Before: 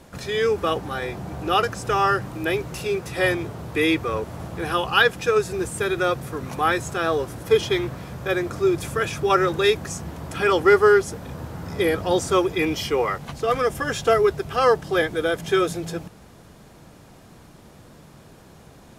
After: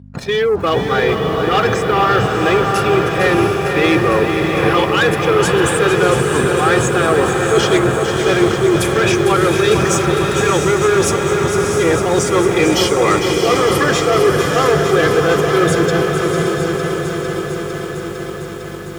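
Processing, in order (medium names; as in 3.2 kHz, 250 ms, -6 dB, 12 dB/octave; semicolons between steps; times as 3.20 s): in parallel at +2 dB: upward compressor, threshold -23 dBFS; on the sum: gate -22 dBFS, range -37 dB; reverse; compression, threshold -20 dBFS, peak gain reduction 16 dB; reverse; spectral gate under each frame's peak -25 dB strong; waveshaping leveller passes 2; hum 50 Hz, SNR 16 dB; high-pass 88 Hz 12 dB/octave; echo that smears into a reverb 678 ms, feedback 53%, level -4 dB; bit-crushed delay 453 ms, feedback 80%, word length 7-bit, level -8 dB; trim +2 dB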